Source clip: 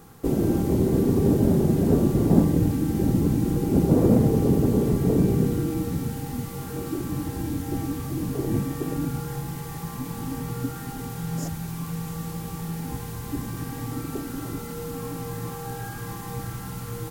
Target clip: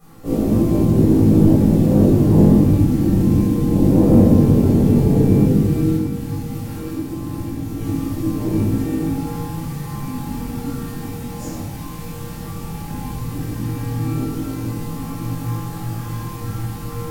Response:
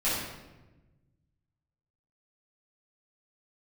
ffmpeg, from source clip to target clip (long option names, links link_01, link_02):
-filter_complex "[0:a]asettb=1/sr,asplit=3[link_01][link_02][link_03];[link_01]atrim=end=5.944[link_04];[link_02]atrim=start=5.94:end=7.78,asetpts=PTS-STARTPTS,afade=type=in:duration=0.004:curve=qsin,afade=type=out:start_time=1.836:duration=0.004:curve=qsin,acompressor=threshold=-29dB:ratio=6[link_05];[link_03]atrim=start=7.776[link_06];[link_04][link_05]acrossfade=duration=0.004:curve1=hsin:curve2=qsin[link_07];[link_07][link_06]acrossfade=duration=0.004:curve1=qsin:curve2=hsin,flanger=delay=18:depth=3.1:speed=0.13[link_08];[1:a]atrim=start_sample=2205[link_09];[link_08][link_09]afir=irnorm=-1:irlink=0,volume=-3dB"